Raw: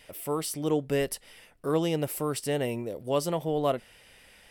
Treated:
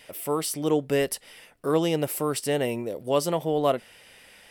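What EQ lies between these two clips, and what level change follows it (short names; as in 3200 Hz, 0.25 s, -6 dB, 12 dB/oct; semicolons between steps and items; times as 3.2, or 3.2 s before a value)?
low shelf 87 Hz -12 dB; +4.0 dB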